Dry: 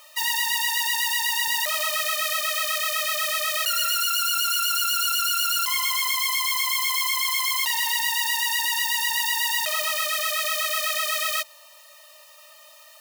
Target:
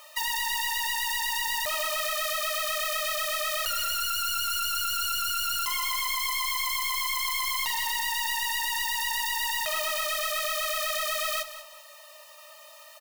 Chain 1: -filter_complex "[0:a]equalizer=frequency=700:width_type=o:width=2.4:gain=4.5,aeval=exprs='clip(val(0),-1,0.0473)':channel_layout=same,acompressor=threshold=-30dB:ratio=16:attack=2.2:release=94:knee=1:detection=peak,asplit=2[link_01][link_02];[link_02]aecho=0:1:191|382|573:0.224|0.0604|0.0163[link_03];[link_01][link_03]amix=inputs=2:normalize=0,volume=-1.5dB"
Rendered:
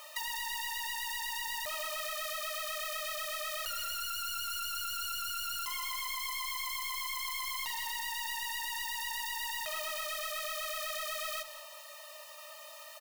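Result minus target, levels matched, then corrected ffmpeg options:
downward compressor: peak gain reduction +8.5 dB
-filter_complex "[0:a]equalizer=frequency=700:width_type=o:width=2.4:gain=4.5,aeval=exprs='clip(val(0),-1,0.0473)':channel_layout=same,acompressor=threshold=-21dB:ratio=16:attack=2.2:release=94:knee=1:detection=peak,asplit=2[link_01][link_02];[link_02]aecho=0:1:191|382|573:0.224|0.0604|0.0163[link_03];[link_01][link_03]amix=inputs=2:normalize=0,volume=-1.5dB"

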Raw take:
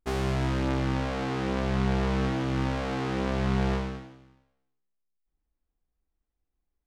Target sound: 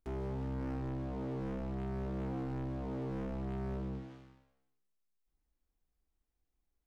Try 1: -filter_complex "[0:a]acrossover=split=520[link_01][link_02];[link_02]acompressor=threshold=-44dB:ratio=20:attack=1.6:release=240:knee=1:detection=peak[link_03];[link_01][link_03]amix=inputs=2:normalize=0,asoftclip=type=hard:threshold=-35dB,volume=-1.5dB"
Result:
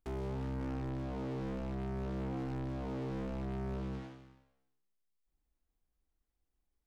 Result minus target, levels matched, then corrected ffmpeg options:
downward compressor: peak gain reduction −7 dB
-filter_complex "[0:a]acrossover=split=520[link_01][link_02];[link_02]acompressor=threshold=-51.5dB:ratio=20:attack=1.6:release=240:knee=1:detection=peak[link_03];[link_01][link_03]amix=inputs=2:normalize=0,asoftclip=type=hard:threshold=-35dB,volume=-1.5dB"

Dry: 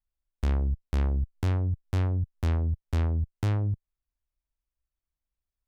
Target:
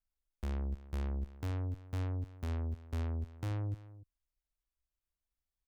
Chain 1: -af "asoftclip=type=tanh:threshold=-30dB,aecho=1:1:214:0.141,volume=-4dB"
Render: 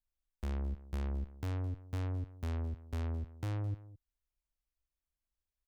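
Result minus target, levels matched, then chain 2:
echo 76 ms early
-af "asoftclip=type=tanh:threshold=-30dB,aecho=1:1:290:0.141,volume=-4dB"

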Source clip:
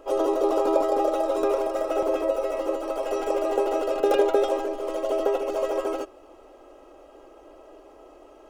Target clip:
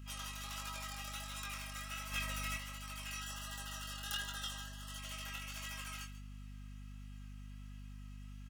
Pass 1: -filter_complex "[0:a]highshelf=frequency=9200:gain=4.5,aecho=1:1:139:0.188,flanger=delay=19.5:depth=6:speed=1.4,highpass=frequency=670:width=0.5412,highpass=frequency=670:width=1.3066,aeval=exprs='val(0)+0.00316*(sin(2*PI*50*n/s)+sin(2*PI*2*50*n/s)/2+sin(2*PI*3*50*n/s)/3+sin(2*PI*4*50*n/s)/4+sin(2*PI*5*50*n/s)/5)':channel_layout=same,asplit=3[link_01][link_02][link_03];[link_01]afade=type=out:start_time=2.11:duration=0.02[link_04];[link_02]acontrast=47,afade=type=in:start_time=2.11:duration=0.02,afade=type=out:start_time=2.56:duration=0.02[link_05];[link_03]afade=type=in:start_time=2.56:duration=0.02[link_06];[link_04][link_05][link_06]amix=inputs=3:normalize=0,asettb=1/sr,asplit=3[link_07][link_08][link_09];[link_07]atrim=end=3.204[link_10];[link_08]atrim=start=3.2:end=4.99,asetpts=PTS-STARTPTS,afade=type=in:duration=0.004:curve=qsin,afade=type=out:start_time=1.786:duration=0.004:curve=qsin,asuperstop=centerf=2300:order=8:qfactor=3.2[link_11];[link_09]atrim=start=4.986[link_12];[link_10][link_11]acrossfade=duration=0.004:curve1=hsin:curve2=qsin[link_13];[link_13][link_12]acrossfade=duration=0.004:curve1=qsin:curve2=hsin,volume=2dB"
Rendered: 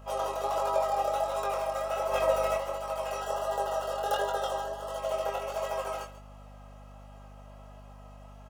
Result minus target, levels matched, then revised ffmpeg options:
500 Hz band +20.0 dB
-filter_complex "[0:a]highshelf=frequency=9200:gain=4.5,aecho=1:1:139:0.188,flanger=delay=19.5:depth=6:speed=1.4,highpass=frequency=1800:width=0.5412,highpass=frequency=1800:width=1.3066,aeval=exprs='val(0)+0.00316*(sin(2*PI*50*n/s)+sin(2*PI*2*50*n/s)/2+sin(2*PI*3*50*n/s)/3+sin(2*PI*4*50*n/s)/4+sin(2*PI*5*50*n/s)/5)':channel_layout=same,asplit=3[link_01][link_02][link_03];[link_01]afade=type=out:start_time=2.11:duration=0.02[link_04];[link_02]acontrast=47,afade=type=in:start_time=2.11:duration=0.02,afade=type=out:start_time=2.56:duration=0.02[link_05];[link_03]afade=type=in:start_time=2.56:duration=0.02[link_06];[link_04][link_05][link_06]amix=inputs=3:normalize=0,asettb=1/sr,asplit=3[link_07][link_08][link_09];[link_07]atrim=end=3.204[link_10];[link_08]atrim=start=3.2:end=4.99,asetpts=PTS-STARTPTS,afade=type=in:duration=0.004:curve=qsin,afade=type=out:start_time=1.786:duration=0.004:curve=qsin,asuperstop=centerf=2300:order=8:qfactor=3.2[link_11];[link_09]atrim=start=4.986[link_12];[link_10][link_11]acrossfade=duration=0.004:curve1=hsin:curve2=qsin[link_13];[link_13][link_12]acrossfade=duration=0.004:curve1=qsin:curve2=hsin,volume=2dB"

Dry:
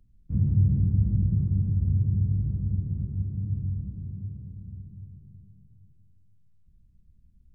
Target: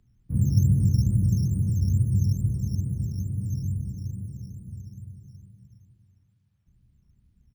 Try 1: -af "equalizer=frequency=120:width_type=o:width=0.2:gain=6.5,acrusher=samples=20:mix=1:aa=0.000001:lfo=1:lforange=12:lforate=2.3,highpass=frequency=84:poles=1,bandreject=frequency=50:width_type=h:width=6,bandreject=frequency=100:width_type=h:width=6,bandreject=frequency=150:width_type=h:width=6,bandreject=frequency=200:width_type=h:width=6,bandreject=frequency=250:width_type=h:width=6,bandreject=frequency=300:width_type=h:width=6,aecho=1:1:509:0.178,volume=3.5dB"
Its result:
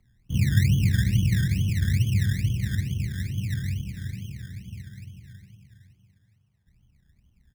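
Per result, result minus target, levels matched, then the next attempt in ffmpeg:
echo 207 ms late; sample-and-hold swept by an LFO: distortion +11 dB
-af "equalizer=frequency=120:width_type=o:width=0.2:gain=6.5,acrusher=samples=20:mix=1:aa=0.000001:lfo=1:lforange=12:lforate=2.3,highpass=frequency=84:poles=1,bandreject=frequency=50:width_type=h:width=6,bandreject=frequency=100:width_type=h:width=6,bandreject=frequency=150:width_type=h:width=6,bandreject=frequency=200:width_type=h:width=6,bandreject=frequency=250:width_type=h:width=6,bandreject=frequency=300:width_type=h:width=6,aecho=1:1:302:0.178,volume=3.5dB"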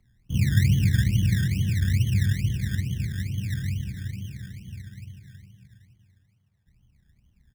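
sample-and-hold swept by an LFO: distortion +11 dB
-af "equalizer=frequency=120:width_type=o:width=0.2:gain=6.5,acrusher=samples=6:mix=1:aa=0.000001:lfo=1:lforange=3.6:lforate=2.3,highpass=frequency=84:poles=1,bandreject=frequency=50:width_type=h:width=6,bandreject=frequency=100:width_type=h:width=6,bandreject=frequency=150:width_type=h:width=6,bandreject=frequency=200:width_type=h:width=6,bandreject=frequency=250:width_type=h:width=6,bandreject=frequency=300:width_type=h:width=6,aecho=1:1:302:0.178,volume=3.5dB"

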